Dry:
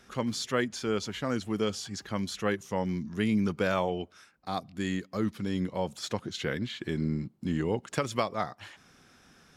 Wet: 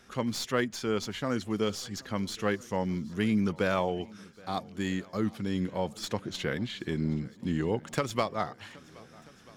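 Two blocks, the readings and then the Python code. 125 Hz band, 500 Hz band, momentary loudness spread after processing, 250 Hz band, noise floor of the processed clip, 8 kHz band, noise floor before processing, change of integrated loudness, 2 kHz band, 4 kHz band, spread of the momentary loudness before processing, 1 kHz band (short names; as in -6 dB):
0.0 dB, 0.0 dB, 9 LU, 0.0 dB, -54 dBFS, -0.5 dB, -61 dBFS, 0.0 dB, 0.0 dB, 0.0 dB, 8 LU, 0.0 dB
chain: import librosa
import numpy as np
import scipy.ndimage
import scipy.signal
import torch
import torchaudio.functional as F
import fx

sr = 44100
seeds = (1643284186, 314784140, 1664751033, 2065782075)

y = fx.tracing_dist(x, sr, depth_ms=0.029)
y = fx.echo_swing(y, sr, ms=1287, ratio=1.5, feedback_pct=52, wet_db=-24.0)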